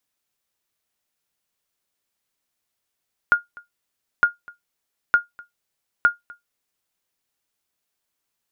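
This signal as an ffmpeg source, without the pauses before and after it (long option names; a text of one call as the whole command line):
ffmpeg -f lavfi -i "aevalsrc='0.473*(sin(2*PI*1420*mod(t,0.91))*exp(-6.91*mod(t,0.91)/0.15)+0.0562*sin(2*PI*1420*max(mod(t,0.91)-0.25,0))*exp(-6.91*max(mod(t,0.91)-0.25,0)/0.15))':duration=3.64:sample_rate=44100" out.wav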